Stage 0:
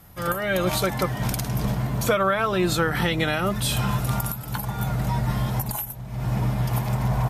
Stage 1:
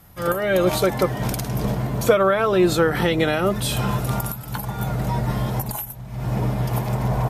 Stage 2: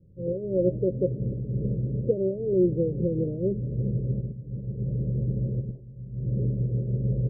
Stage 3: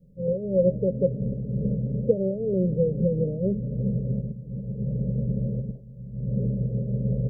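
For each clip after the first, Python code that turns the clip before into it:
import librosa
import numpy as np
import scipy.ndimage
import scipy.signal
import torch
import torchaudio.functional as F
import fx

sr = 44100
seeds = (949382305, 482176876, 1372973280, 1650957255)

y1 = fx.dynamic_eq(x, sr, hz=430.0, q=1.0, threshold_db=-38.0, ratio=4.0, max_db=8)
y2 = scipy.signal.sosfilt(scipy.signal.cheby1(6, 6, 560.0, 'lowpass', fs=sr, output='sos'), y1)
y2 = y2 * 10.0 ** (-2.0 / 20.0)
y3 = fx.fixed_phaser(y2, sr, hz=340.0, stages=6)
y3 = y3 * 10.0 ** (5.0 / 20.0)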